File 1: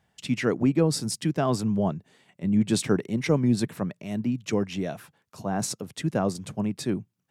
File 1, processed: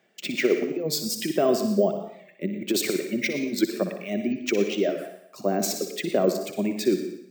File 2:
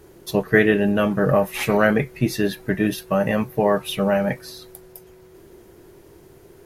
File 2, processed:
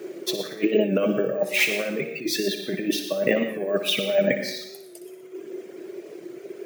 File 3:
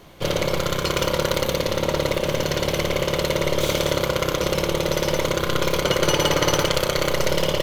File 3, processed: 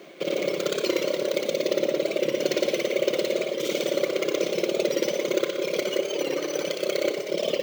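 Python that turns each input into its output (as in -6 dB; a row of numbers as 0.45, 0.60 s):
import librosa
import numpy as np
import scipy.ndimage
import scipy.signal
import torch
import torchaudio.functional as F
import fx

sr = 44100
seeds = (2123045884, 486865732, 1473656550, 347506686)

p1 = fx.dereverb_blind(x, sr, rt60_s=1.7)
p2 = fx.dynamic_eq(p1, sr, hz=1400.0, q=0.89, threshold_db=-38.0, ratio=4.0, max_db=-6)
p3 = fx.over_compress(p2, sr, threshold_db=-26.0, ratio=-0.5)
p4 = fx.cabinet(p3, sr, low_hz=200.0, low_slope=24, high_hz=9000.0, hz=(370.0, 590.0, 910.0, 2300.0), db=(10, 8, -10, 7))
p5 = p4 + fx.echo_thinned(p4, sr, ms=60, feedback_pct=57, hz=270.0, wet_db=-10.0, dry=0)
p6 = fx.rev_plate(p5, sr, seeds[0], rt60_s=0.63, hf_ratio=0.9, predelay_ms=80, drr_db=9.0)
p7 = np.repeat(p6[::2], 2)[:len(p6)]
p8 = fx.record_warp(p7, sr, rpm=45.0, depth_cents=100.0)
y = p8 * 10.0 ** (-26 / 20.0) / np.sqrt(np.mean(np.square(p8)))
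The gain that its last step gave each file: +2.0, +1.0, -2.5 dB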